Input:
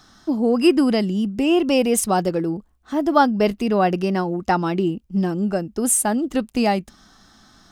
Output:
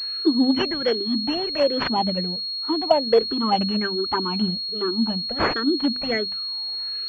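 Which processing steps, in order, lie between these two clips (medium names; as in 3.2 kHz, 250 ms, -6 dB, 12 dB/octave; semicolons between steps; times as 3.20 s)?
drifting ripple filter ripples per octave 0.54, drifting -1.2 Hz, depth 20 dB; speed mistake 44.1 kHz file played as 48 kHz; tilt EQ +2 dB/octave; hum notches 50/100/150/200/250 Hz; dynamic bell 880 Hz, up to -5 dB, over -29 dBFS, Q 1.7; touch-sensitive flanger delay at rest 2.5 ms, full sweep at -12 dBFS; class-D stage that switches slowly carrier 4.3 kHz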